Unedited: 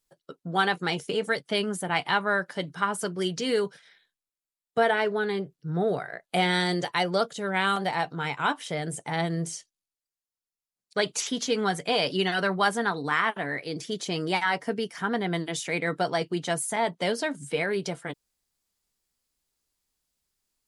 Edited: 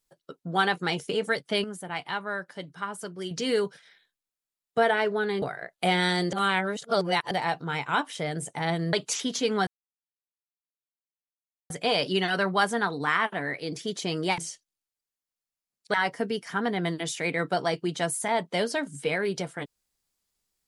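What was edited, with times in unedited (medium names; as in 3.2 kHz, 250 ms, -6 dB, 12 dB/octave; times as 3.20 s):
1.64–3.31 s: gain -7 dB
5.42–5.93 s: delete
6.84–7.82 s: reverse
9.44–11.00 s: move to 14.42 s
11.74 s: insert silence 2.03 s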